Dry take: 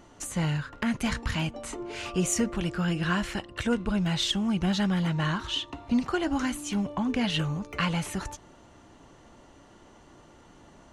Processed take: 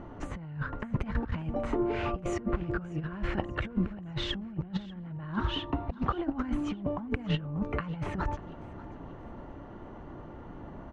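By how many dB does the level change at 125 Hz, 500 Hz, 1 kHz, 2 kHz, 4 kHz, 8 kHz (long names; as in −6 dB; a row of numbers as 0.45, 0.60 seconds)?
−4.0 dB, −1.5 dB, −2.5 dB, −7.0 dB, −9.0 dB, below −20 dB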